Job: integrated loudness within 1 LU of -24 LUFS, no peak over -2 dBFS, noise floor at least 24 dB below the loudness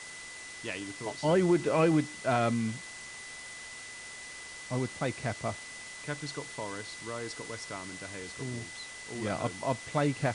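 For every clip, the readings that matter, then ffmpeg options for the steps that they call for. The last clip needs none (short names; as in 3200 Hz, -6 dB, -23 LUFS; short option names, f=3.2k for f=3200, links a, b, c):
steady tone 2000 Hz; tone level -45 dBFS; noise floor -45 dBFS; noise floor target -58 dBFS; loudness -33.5 LUFS; peak -14.5 dBFS; loudness target -24.0 LUFS
-> -af "bandreject=f=2k:w=30"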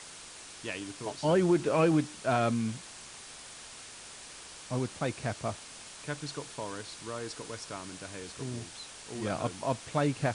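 steady tone none; noise floor -48 dBFS; noise floor target -57 dBFS
-> -af "afftdn=nr=9:nf=-48"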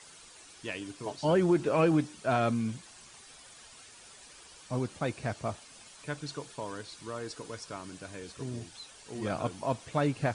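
noise floor -53 dBFS; noise floor target -57 dBFS
-> -af "afftdn=nr=6:nf=-53"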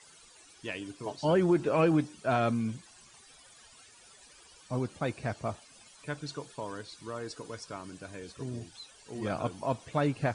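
noise floor -57 dBFS; loudness -32.5 LUFS; peak -14.5 dBFS; loudness target -24.0 LUFS
-> -af "volume=8.5dB"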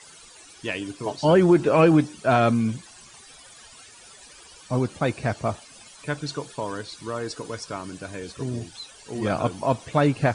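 loudness -24.0 LUFS; peak -6.0 dBFS; noise floor -49 dBFS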